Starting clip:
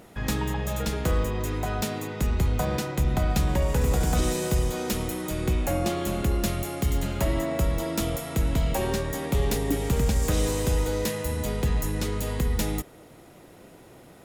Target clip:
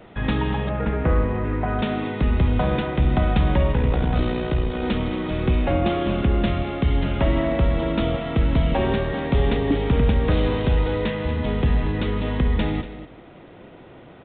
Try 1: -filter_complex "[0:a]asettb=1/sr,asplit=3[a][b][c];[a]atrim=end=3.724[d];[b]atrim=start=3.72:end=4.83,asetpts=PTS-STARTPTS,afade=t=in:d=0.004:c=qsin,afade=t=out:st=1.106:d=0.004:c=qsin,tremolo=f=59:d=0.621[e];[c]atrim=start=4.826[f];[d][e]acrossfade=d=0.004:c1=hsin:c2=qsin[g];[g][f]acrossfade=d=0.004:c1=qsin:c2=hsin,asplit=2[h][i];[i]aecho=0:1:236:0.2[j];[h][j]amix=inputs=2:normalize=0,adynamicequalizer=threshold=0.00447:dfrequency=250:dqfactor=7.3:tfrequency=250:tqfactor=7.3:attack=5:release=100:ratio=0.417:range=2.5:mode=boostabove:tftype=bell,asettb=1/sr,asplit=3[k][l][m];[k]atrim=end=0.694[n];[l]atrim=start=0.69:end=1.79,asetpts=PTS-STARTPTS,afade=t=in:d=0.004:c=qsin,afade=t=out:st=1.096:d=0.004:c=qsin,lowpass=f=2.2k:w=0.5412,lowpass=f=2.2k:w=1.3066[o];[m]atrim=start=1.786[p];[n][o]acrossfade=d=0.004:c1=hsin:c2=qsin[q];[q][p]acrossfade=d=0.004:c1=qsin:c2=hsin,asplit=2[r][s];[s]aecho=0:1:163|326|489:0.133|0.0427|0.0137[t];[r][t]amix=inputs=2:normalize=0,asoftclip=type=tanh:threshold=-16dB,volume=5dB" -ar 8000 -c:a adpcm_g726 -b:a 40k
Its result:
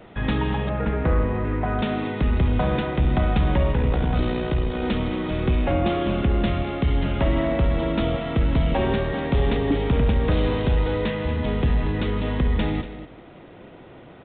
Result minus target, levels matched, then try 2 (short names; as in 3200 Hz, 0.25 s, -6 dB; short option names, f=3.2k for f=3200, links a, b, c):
soft clip: distortion +15 dB
-filter_complex "[0:a]asettb=1/sr,asplit=3[a][b][c];[a]atrim=end=3.724[d];[b]atrim=start=3.72:end=4.83,asetpts=PTS-STARTPTS,afade=t=in:d=0.004:c=qsin,afade=t=out:st=1.106:d=0.004:c=qsin,tremolo=f=59:d=0.621[e];[c]atrim=start=4.826[f];[d][e]acrossfade=d=0.004:c1=hsin:c2=qsin[g];[g][f]acrossfade=d=0.004:c1=qsin:c2=hsin,asplit=2[h][i];[i]aecho=0:1:236:0.2[j];[h][j]amix=inputs=2:normalize=0,adynamicequalizer=threshold=0.00447:dfrequency=250:dqfactor=7.3:tfrequency=250:tqfactor=7.3:attack=5:release=100:ratio=0.417:range=2.5:mode=boostabove:tftype=bell,asettb=1/sr,asplit=3[k][l][m];[k]atrim=end=0.694[n];[l]atrim=start=0.69:end=1.79,asetpts=PTS-STARTPTS,afade=t=in:d=0.004:c=qsin,afade=t=out:st=1.096:d=0.004:c=qsin,lowpass=f=2.2k:w=0.5412,lowpass=f=2.2k:w=1.3066[o];[m]atrim=start=1.786[p];[n][o]acrossfade=d=0.004:c1=hsin:c2=qsin[q];[q][p]acrossfade=d=0.004:c1=qsin:c2=hsin,asplit=2[r][s];[s]aecho=0:1:163|326|489:0.133|0.0427|0.0137[t];[r][t]amix=inputs=2:normalize=0,asoftclip=type=tanh:threshold=-7.5dB,volume=5dB" -ar 8000 -c:a adpcm_g726 -b:a 40k